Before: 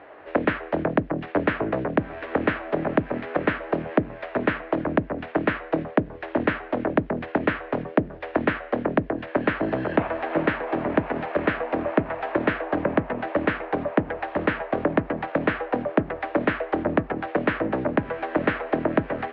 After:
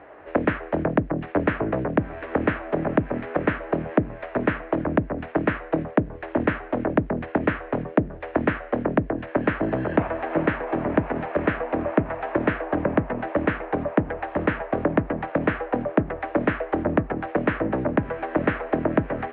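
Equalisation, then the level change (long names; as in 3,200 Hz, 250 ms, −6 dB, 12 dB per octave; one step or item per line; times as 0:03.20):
low-pass filter 3,200 Hz 12 dB per octave
high-frequency loss of the air 98 metres
low-shelf EQ 130 Hz +7 dB
0.0 dB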